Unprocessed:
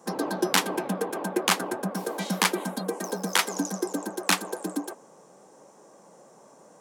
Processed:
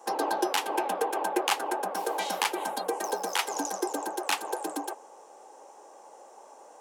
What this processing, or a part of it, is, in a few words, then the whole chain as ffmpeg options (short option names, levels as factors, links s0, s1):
laptop speaker: -af "highpass=f=340:w=0.5412,highpass=f=340:w=1.3066,equalizer=f=830:t=o:w=0.3:g=10,equalizer=f=2800:t=o:w=0.44:g=5,alimiter=limit=0.237:level=0:latency=1:release=220"